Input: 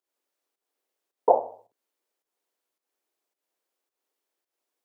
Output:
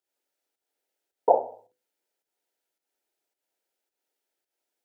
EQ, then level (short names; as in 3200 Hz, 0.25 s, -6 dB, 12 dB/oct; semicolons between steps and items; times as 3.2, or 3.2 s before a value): Butterworth band-stop 1100 Hz, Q 4.6; notches 50/100/150/200/250/300/350/400/450/500 Hz; 0.0 dB